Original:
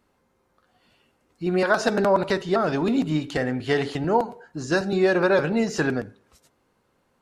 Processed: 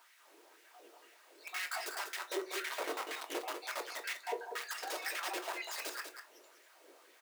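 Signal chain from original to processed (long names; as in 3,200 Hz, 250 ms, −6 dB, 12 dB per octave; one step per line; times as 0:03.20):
time-frequency cells dropped at random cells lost 69%
downward compressor 8 to 1, threshold −34 dBFS, peak gain reduction 18.5 dB
wrap-around overflow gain 35.5 dB
background noise pink −63 dBFS
four-pole ladder high-pass 300 Hz, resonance 45%
auto-filter high-pass sine 2 Hz 400–2,000 Hz
single-tap delay 194 ms −7.5 dB
on a send at −5 dB: convolution reverb RT60 0.30 s, pre-delay 3 ms
on the sum: level +7.5 dB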